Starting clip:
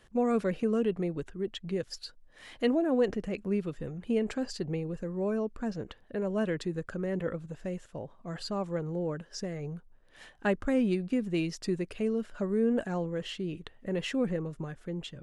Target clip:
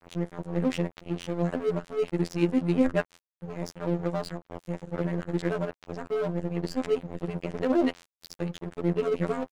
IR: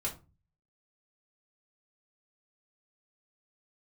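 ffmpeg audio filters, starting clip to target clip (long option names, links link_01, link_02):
-filter_complex "[0:a]areverse,asplit=2[link_01][link_02];[1:a]atrim=start_sample=2205,asetrate=88200,aresample=44100,lowpass=2400[link_03];[link_02][link_03]afir=irnorm=-1:irlink=0,volume=-2dB[link_04];[link_01][link_04]amix=inputs=2:normalize=0,afftfilt=real='hypot(re,im)*cos(PI*b)':imag='0':win_size=2048:overlap=0.75,aeval=exprs='sgn(val(0))*max(abs(val(0))-0.00944,0)':channel_layout=same,atempo=1.6,volume=4.5dB"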